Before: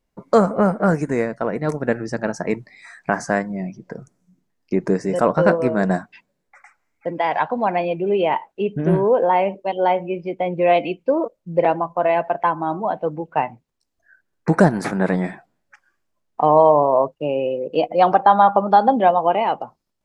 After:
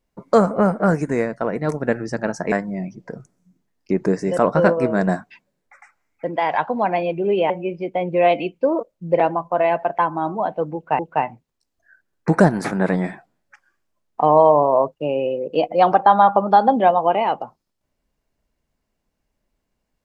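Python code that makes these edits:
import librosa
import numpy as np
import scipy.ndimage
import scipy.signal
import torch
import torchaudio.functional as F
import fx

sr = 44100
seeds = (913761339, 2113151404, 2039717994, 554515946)

y = fx.edit(x, sr, fx.cut(start_s=2.52, length_s=0.82),
    fx.cut(start_s=8.32, length_s=1.63),
    fx.repeat(start_s=13.19, length_s=0.25, count=2), tone=tone)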